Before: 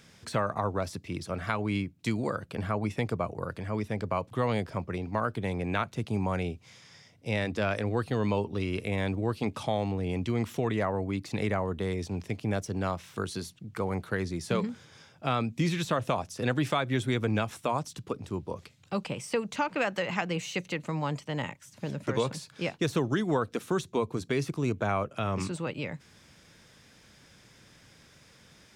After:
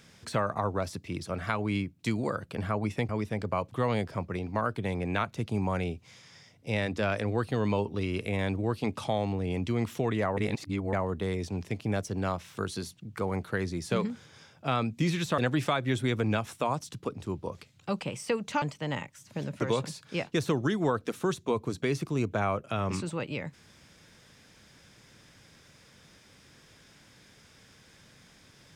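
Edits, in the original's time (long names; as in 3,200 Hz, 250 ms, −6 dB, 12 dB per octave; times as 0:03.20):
0:03.09–0:03.68: remove
0:10.96–0:11.52: reverse
0:15.97–0:16.42: remove
0:19.66–0:21.09: remove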